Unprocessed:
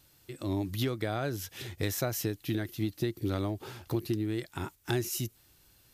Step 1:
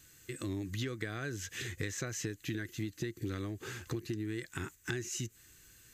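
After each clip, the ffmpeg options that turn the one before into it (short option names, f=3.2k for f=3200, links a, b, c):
-filter_complex "[0:a]acrossover=split=7000[a][b];[b]acompressor=threshold=-55dB:ratio=4:attack=1:release=60[c];[a][c]amix=inputs=2:normalize=0,superequalizer=8b=0.355:9b=0.355:11b=2.24:12b=1.41:15b=2.82,acompressor=threshold=-37dB:ratio=3,volume=1dB"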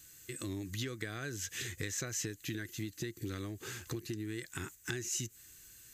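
-af "highshelf=f=4.2k:g=8.5,volume=-2.5dB"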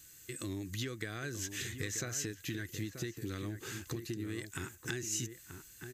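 -filter_complex "[0:a]asplit=2[a][b];[b]adelay=932.9,volume=-8dB,highshelf=f=4k:g=-21[c];[a][c]amix=inputs=2:normalize=0"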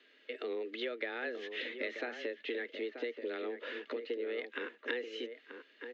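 -af "highpass=f=180:t=q:w=0.5412,highpass=f=180:t=q:w=1.307,lowpass=f=3.4k:t=q:w=0.5176,lowpass=f=3.4k:t=q:w=0.7071,lowpass=f=3.4k:t=q:w=1.932,afreqshift=120,volume=3.5dB"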